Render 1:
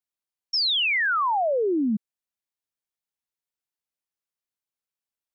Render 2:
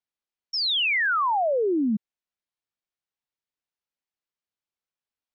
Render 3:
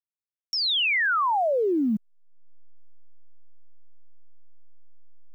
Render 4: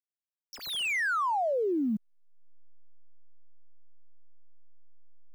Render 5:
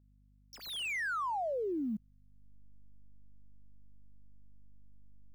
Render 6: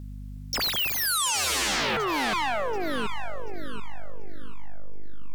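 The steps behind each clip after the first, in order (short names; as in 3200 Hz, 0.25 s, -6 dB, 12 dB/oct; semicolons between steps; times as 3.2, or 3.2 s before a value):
LPF 5000 Hz
level-crossing sampler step -53.5 dBFS; upward compressor, threshold -27 dBFS
median filter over 9 samples; gain -5 dB
hum 50 Hz, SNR 24 dB; gain -6.5 dB
echo with dull and thin repeats by turns 0.367 s, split 1600 Hz, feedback 69%, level -9 dB; sine folder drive 19 dB, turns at -27 dBFS; gain +4 dB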